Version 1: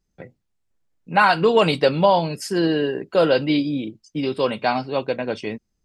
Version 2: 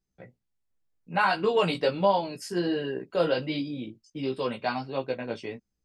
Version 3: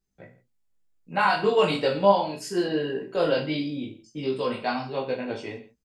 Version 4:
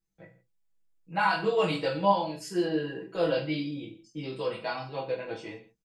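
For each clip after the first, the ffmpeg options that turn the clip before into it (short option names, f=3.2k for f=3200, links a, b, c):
-af "flanger=delay=15:depth=2.4:speed=1.4,volume=-5dB"
-filter_complex "[0:a]equalizer=f=7.1k:t=o:w=0.24:g=3.5,asplit=2[a][b];[b]aecho=0:1:20|45|76.25|115.3|164.1:0.631|0.398|0.251|0.158|0.1[c];[a][c]amix=inputs=2:normalize=0"
-af "aecho=1:1:6.1:0.83,volume=-6.5dB"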